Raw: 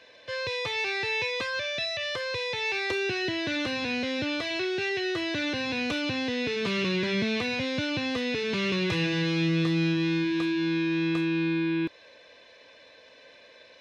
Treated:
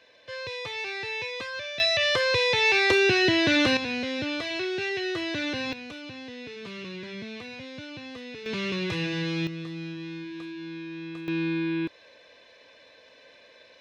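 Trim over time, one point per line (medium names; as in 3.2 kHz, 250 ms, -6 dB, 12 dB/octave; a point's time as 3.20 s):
-4 dB
from 1.80 s +8 dB
from 3.77 s -0.5 dB
from 5.73 s -11 dB
from 8.46 s -2.5 dB
from 9.47 s -11 dB
from 11.28 s -1 dB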